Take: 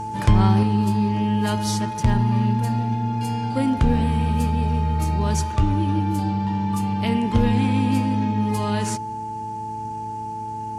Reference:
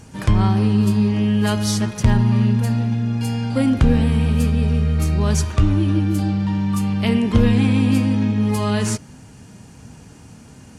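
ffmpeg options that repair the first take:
ffmpeg -i in.wav -af "bandreject=frequency=109.1:width_type=h:width=4,bandreject=frequency=218.2:width_type=h:width=4,bandreject=frequency=327.3:width_type=h:width=4,bandreject=frequency=436.4:width_type=h:width=4,bandreject=frequency=870:width=30,asetnsamples=nb_out_samples=441:pad=0,asendcmd='0.63 volume volume 4dB',volume=0dB" out.wav

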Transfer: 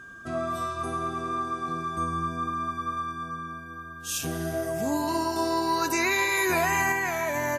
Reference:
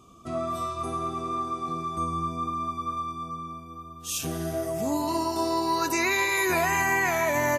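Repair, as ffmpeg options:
ffmpeg -i in.wav -af "bandreject=frequency=1600:width=30,asetnsamples=nb_out_samples=441:pad=0,asendcmd='6.92 volume volume 3.5dB',volume=0dB" out.wav

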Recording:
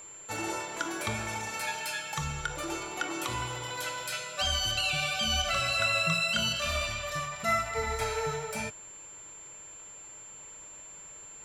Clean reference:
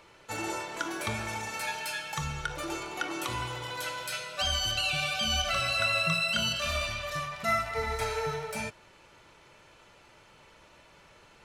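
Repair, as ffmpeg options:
ffmpeg -i in.wav -af "bandreject=frequency=7300:width=30" out.wav

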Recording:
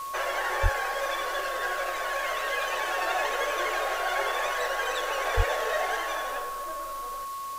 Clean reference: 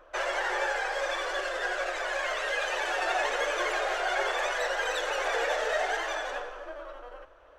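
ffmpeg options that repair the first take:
ffmpeg -i in.wav -filter_complex "[0:a]adeclick=threshold=4,bandreject=frequency=1100:width=30,asplit=3[link_01][link_02][link_03];[link_01]afade=type=out:start_time=0.62:duration=0.02[link_04];[link_02]highpass=frequency=140:width=0.5412,highpass=frequency=140:width=1.3066,afade=type=in:start_time=0.62:duration=0.02,afade=type=out:start_time=0.74:duration=0.02[link_05];[link_03]afade=type=in:start_time=0.74:duration=0.02[link_06];[link_04][link_05][link_06]amix=inputs=3:normalize=0,asplit=3[link_07][link_08][link_09];[link_07]afade=type=out:start_time=5.36:duration=0.02[link_10];[link_08]highpass=frequency=140:width=0.5412,highpass=frequency=140:width=1.3066,afade=type=in:start_time=5.36:duration=0.02,afade=type=out:start_time=5.48:duration=0.02[link_11];[link_09]afade=type=in:start_time=5.48:duration=0.02[link_12];[link_10][link_11][link_12]amix=inputs=3:normalize=0,afwtdn=0.005" out.wav

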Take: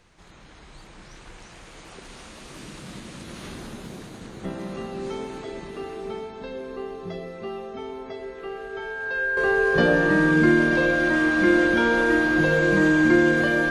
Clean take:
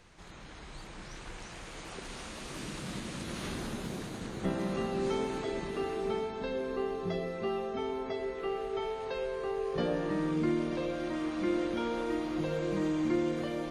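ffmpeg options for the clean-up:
ffmpeg -i in.wav -af "bandreject=frequency=1600:width=30,asetnsamples=nb_out_samples=441:pad=0,asendcmd='9.37 volume volume -11.5dB',volume=0dB" out.wav

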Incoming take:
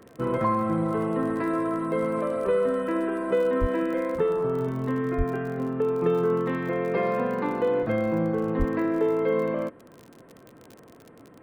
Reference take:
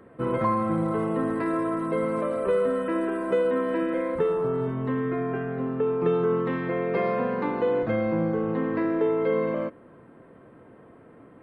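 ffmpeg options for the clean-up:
ffmpeg -i in.wav -filter_complex "[0:a]adeclick=threshold=4,asplit=3[link_01][link_02][link_03];[link_01]afade=type=out:start_time=3.6:duration=0.02[link_04];[link_02]highpass=frequency=140:width=0.5412,highpass=frequency=140:width=1.3066,afade=type=in:start_time=3.6:duration=0.02,afade=type=out:start_time=3.72:duration=0.02[link_05];[link_03]afade=type=in:start_time=3.72:duration=0.02[link_06];[link_04][link_05][link_06]amix=inputs=3:normalize=0,asplit=3[link_07][link_08][link_09];[link_07]afade=type=out:start_time=5.17:duration=0.02[link_10];[link_08]highpass=frequency=140:width=0.5412,highpass=frequency=140:width=1.3066,afade=type=in:start_time=5.17:duration=0.02,afade=type=out:start_time=5.29:duration=0.02[link_11];[link_09]afade=type=in:start_time=5.29:duration=0.02[link_12];[link_10][link_11][link_12]amix=inputs=3:normalize=0,asplit=3[link_13][link_14][link_15];[link_13]afade=type=out:start_time=8.58:duration=0.02[link_16];[link_14]highpass=frequency=140:width=0.5412,highpass=frequency=140:width=1.3066,afade=type=in:start_time=8.58:duration=0.02,afade=type=out:start_time=8.7:duration=0.02[link_17];[link_15]afade=type=in:start_time=8.7:duration=0.02[link_18];[link_16][link_17][link_18]amix=inputs=3:normalize=0" out.wav

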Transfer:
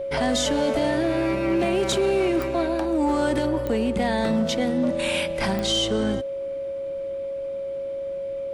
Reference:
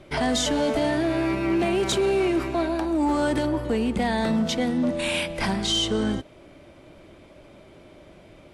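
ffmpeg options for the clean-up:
ffmpeg -i in.wav -af "adeclick=threshold=4,bandreject=frequency=550:width=30" out.wav

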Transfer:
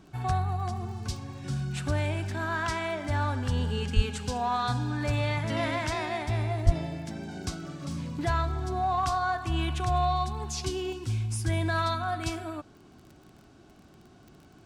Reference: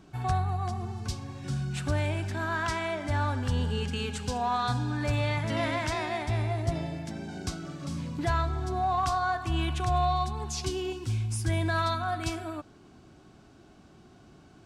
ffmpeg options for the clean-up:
ffmpeg -i in.wav -filter_complex "[0:a]adeclick=threshold=4,asplit=3[link_01][link_02][link_03];[link_01]afade=type=out:start_time=3.95:duration=0.02[link_04];[link_02]highpass=frequency=140:width=0.5412,highpass=frequency=140:width=1.3066,afade=type=in:start_time=3.95:duration=0.02,afade=type=out:start_time=4.07:duration=0.02[link_05];[link_03]afade=type=in:start_time=4.07:duration=0.02[link_06];[link_04][link_05][link_06]amix=inputs=3:normalize=0,asplit=3[link_07][link_08][link_09];[link_07]afade=type=out:start_time=6.65:duration=0.02[link_10];[link_08]highpass=frequency=140:width=0.5412,highpass=frequency=140:width=1.3066,afade=type=in:start_time=6.65:duration=0.02,afade=type=out:start_time=6.77:duration=0.02[link_11];[link_09]afade=type=in:start_time=6.77:duration=0.02[link_12];[link_10][link_11][link_12]amix=inputs=3:normalize=0" out.wav

